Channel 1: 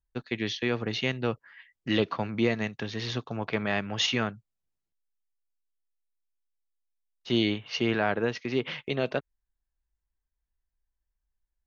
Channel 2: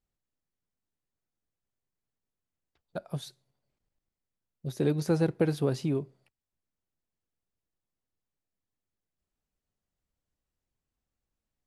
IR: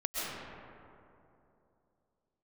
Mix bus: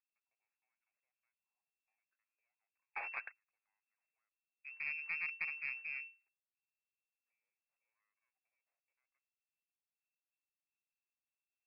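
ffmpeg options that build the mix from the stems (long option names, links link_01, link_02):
-filter_complex "[0:a]highpass=frequency=1200:poles=1,acompressor=threshold=-42dB:ratio=4,aeval=exprs='0.0562*(cos(1*acos(clip(val(0)/0.0562,-1,1)))-cos(1*PI/2))+0.00794*(cos(5*acos(clip(val(0)/0.0562,-1,1)))-cos(5*PI/2))+0.0126*(cos(8*acos(clip(val(0)/0.0562,-1,1)))-cos(8*PI/2))':channel_layout=same,volume=2dB[link_01];[1:a]aeval=exprs='max(val(0),0)':channel_layout=same,volume=-12.5dB,asplit=2[link_02][link_03];[link_03]apad=whole_len=514439[link_04];[link_01][link_04]sidechaingate=range=-52dB:threshold=-57dB:ratio=16:detection=peak[link_05];[link_05][link_02]amix=inputs=2:normalize=0,lowpass=frequency=2300:width_type=q:width=0.5098,lowpass=frequency=2300:width_type=q:width=0.6013,lowpass=frequency=2300:width_type=q:width=0.9,lowpass=frequency=2300:width_type=q:width=2.563,afreqshift=-2700,highpass=710,aeval=exprs='0.0708*(cos(1*acos(clip(val(0)/0.0708,-1,1)))-cos(1*PI/2))+0.00158*(cos(4*acos(clip(val(0)/0.0708,-1,1)))-cos(4*PI/2))':channel_layout=same"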